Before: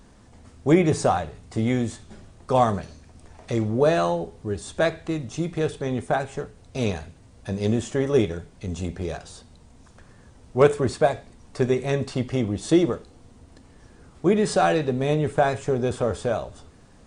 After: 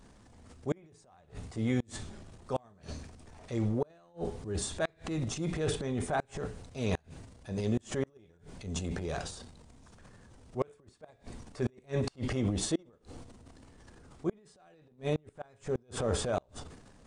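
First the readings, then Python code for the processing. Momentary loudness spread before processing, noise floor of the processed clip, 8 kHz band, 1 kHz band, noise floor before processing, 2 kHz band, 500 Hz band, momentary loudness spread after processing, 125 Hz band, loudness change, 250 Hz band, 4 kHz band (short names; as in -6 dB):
13 LU, -63 dBFS, -4.0 dB, -15.5 dB, -52 dBFS, -12.0 dB, -13.5 dB, 18 LU, -9.0 dB, -11.5 dB, -11.0 dB, -7.0 dB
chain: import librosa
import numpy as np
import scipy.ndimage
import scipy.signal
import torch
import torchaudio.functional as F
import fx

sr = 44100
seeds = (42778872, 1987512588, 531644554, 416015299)

y = fx.transient(x, sr, attack_db=-6, sustain_db=11)
y = fx.gate_flip(y, sr, shuts_db=-13.0, range_db=-34)
y = y * 10.0 ** (-6.5 / 20.0)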